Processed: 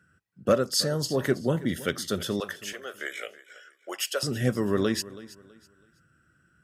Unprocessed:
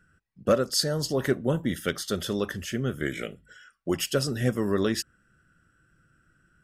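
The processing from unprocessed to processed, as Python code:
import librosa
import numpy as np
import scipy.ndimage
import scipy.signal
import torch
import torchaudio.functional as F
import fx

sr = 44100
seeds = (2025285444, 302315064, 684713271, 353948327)

y = fx.highpass(x, sr, hz=fx.steps((0.0, 75.0), (2.4, 520.0), (4.23, 60.0)), slope=24)
y = fx.echo_feedback(y, sr, ms=326, feedback_pct=29, wet_db=-18.0)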